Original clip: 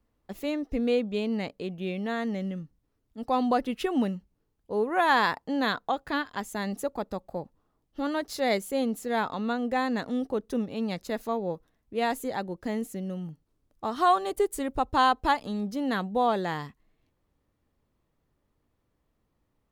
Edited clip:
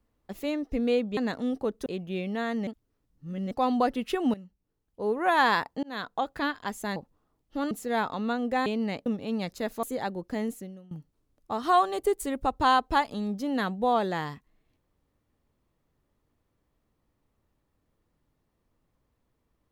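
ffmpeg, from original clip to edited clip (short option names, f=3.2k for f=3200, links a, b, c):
-filter_complex "[0:a]asplit=13[a][b][c][d][e][f][g][h][i][j][k][l][m];[a]atrim=end=1.172[n];[b]atrim=start=9.858:end=10.552[o];[c]atrim=start=1.568:end=2.382[p];[d]atrim=start=2.378:end=3.222,asetpts=PTS-STARTPTS,areverse[q];[e]atrim=start=3.218:end=4.05,asetpts=PTS-STARTPTS,afade=t=out:st=0.828:d=0.004:c=hsin:silence=0.158489[r];[f]atrim=start=4.05:end=5.54,asetpts=PTS-STARTPTS,afade=t=in:d=0.86:silence=0.158489,afade=t=out:st=1.486:d=0.004:c=hsin[s];[g]atrim=start=5.54:end=6.672,asetpts=PTS-STARTPTS,afade=t=in:d=0.53:c=qsin[t];[h]atrim=start=7.388:end=8.142[u];[i]atrim=start=8.908:end=9.862[v];[j]atrim=start=1.168:end=1.572[w];[k]atrim=start=10.548:end=11.322[x];[l]atrim=start=12.158:end=13.24,asetpts=PTS-STARTPTS,afade=t=out:st=0.702:d=0.38:c=qua:silence=0.11885[y];[m]atrim=start=13.24,asetpts=PTS-STARTPTS,afade=t=in:d=0.004:c=hsin:silence=0.11885[z];[n][o]acrossfade=d=0.004:c1=hsin:c2=hsin[aa];[aa][p]acrossfade=d=0.004:c1=hsin:c2=hsin[ab];[ab][q]acrossfade=d=0.004:c1=hsin:c2=hsin[ac];[r][s][t]concat=n=3:v=0:a=1[ad];[ac][ad]acrossfade=d=0.004:c1=hsin:c2=hsin[ae];[ae][u]acrossfade=d=0.004:c1=hsin:c2=hsin[af];[af][v]acrossfade=d=0.004:c1=hsin:c2=hsin[ag];[ag][w]acrossfade=d=0.004:c1=hsin:c2=hsin[ah];[ah][x]acrossfade=d=0.004:c1=hsin:c2=hsin[ai];[y][z]concat=n=2:v=0:a=1[aj];[ai][aj]acrossfade=d=0.004:c1=hsin:c2=hsin"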